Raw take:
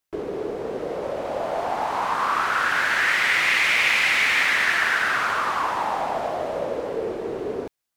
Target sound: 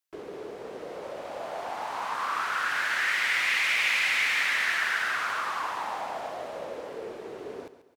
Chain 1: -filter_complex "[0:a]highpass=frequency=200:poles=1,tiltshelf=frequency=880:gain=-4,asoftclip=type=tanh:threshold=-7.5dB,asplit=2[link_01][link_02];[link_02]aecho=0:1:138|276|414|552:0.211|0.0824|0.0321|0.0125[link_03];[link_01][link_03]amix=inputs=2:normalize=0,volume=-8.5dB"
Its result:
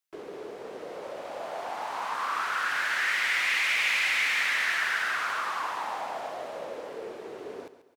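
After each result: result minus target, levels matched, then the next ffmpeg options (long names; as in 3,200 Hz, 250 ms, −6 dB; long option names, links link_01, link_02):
soft clipping: distortion +11 dB; 125 Hz band −3.0 dB
-filter_complex "[0:a]highpass=frequency=200:poles=1,tiltshelf=frequency=880:gain=-4,asoftclip=type=tanh:threshold=-1.5dB,asplit=2[link_01][link_02];[link_02]aecho=0:1:138|276|414|552:0.211|0.0824|0.0321|0.0125[link_03];[link_01][link_03]amix=inputs=2:normalize=0,volume=-8.5dB"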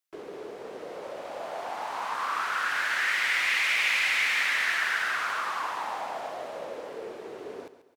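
125 Hz band −4.0 dB
-filter_complex "[0:a]highpass=frequency=71:poles=1,tiltshelf=frequency=880:gain=-4,asoftclip=type=tanh:threshold=-1.5dB,asplit=2[link_01][link_02];[link_02]aecho=0:1:138|276|414|552:0.211|0.0824|0.0321|0.0125[link_03];[link_01][link_03]amix=inputs=2:normalize=0,volume=-8.5dB"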